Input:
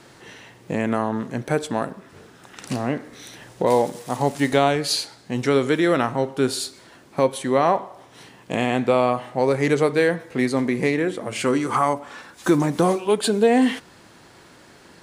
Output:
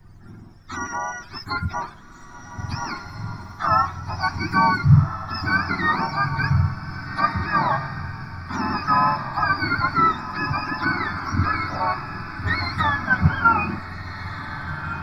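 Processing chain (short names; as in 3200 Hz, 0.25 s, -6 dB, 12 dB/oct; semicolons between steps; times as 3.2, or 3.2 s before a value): spectrum mirrored in octaves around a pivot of 800 Hz; in parallel at -0.5 dB: compressor, threshold -30 dBFS, peak gain reduction 18.5 dB; on the sum: fixed phaser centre 1200 Hz, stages 4; added noise brown -44 dBFS; on a send: diffused feedback echo 1.648 s, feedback 52%, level -7 dB; on the sum: three-band expander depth 40%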